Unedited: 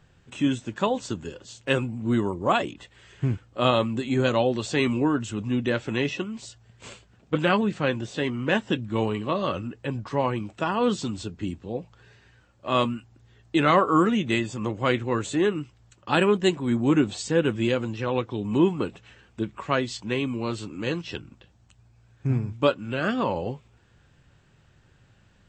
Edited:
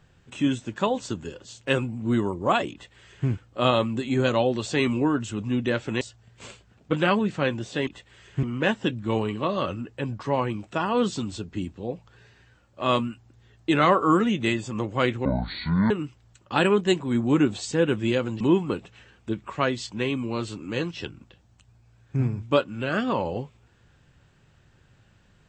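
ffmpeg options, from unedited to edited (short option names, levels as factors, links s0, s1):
-filter_complex "[0:a]asplit=7[s0][s1][s2][s3][s4][s5][s6];[s0]atrim=end=6.012[s7];[s1]atrim=start=6.428:end=8.292[s8];[s2]atrim=start=2.718:end=3.282[s9];[s3]atrim=start=8.288:end=15.114[s10];[s4]atrim=start=15.11:end=15.47,asetpts=PTS-STARTPTS,asetrate=24255,aresample=44100,atrim=end_sample=28865,asetpts=PTS-STARTPTS[s11];[s5]atrim=start=15.466:end=17.972[s12];[s6]atrim=start=18.508[s13];[s7][s8]acrossfade=d=0.004:c1=hsin:c2=hsin[s14];[s14][s9]acrossfade=d=0.004:c1=hsin:c2=hsin[s15];[s15][s10]acrossfade=d=0.004:c1=hsin:c2=hsin[s16];[s16][s11]acrossfade=d=0.004:c1=hsin:c2=hsin[s17];[s17][s12]acrossfade=d=0.004:c1=hsin:c2=hsin[s18];[s18][s13]acrossfade=d=0.004:c1=hsin:c2=hsin"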